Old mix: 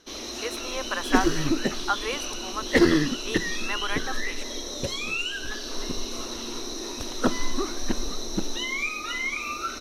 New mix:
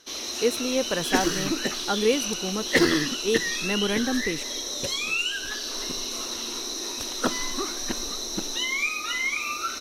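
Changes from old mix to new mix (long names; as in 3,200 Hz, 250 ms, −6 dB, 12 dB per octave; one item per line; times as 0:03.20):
speech: remove high-pass with resonance 1,100 Hz, resonance Q 2.3
master: add spectral tilt +2 dB per octave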